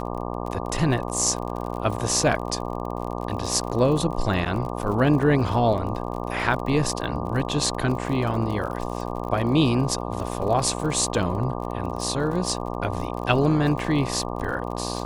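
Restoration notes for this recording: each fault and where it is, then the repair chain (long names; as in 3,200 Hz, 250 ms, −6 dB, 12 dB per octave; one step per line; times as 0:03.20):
mains buzz 60 Hz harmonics 20 −30 dBFS
surface crackle 42 per second −31 dBFS
0:04.45–0:04.46: drop-out 8.1 ms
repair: click removal
hum removal 60 Hz, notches 20
repair the gap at 0:04.45, 8.1 ms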